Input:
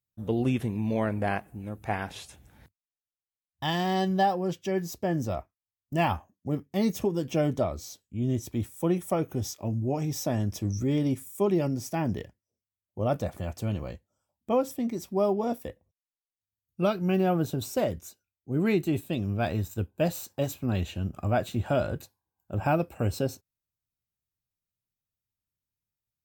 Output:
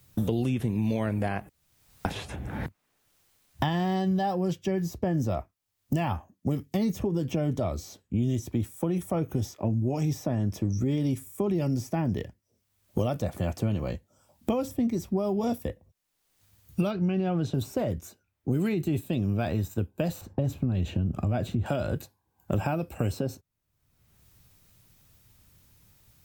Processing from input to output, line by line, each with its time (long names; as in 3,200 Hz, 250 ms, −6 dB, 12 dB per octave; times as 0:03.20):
0:01.49–0:02.05: fill with room tone
0:16.91–0:17.54: low-pass filter 4,500 Hz
0:20.21–0:21.66: spectral tilt −3 dB per octave
whole clip: low-shelf EQ 370 Hz +5 dB; brickwall limiter −18 dBFS; multiband upward and downward compressor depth 100%; level −1.5 dB